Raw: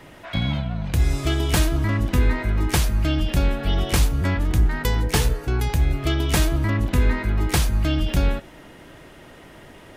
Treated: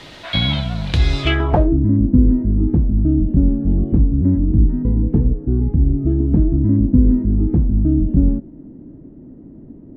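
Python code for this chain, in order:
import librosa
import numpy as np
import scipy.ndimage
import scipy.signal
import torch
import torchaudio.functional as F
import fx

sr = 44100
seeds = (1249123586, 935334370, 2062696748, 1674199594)

y = fx.dmg_noise_colour(x, sr, seeds[0], colour='blue', level_db=-45.0)
y = fx.filter_sweep_lowpass(y, sr, from_hz=3900.0, to_hz=260.0, start_s=1.21, end_s=1.77, q=3.2)
y = y * 10.0 ** (4.0 / 20.0)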